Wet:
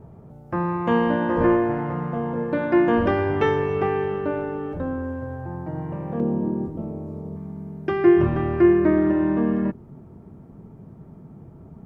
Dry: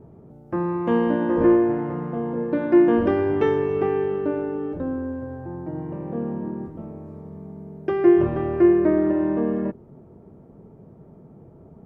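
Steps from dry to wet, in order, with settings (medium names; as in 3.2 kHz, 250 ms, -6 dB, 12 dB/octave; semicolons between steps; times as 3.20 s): peaking EQ 330 Hz -9 dB 1.3 oct, from 6.20 s 1.7 kHz, from 7.36 s 500 Hz; trim +5.5 dB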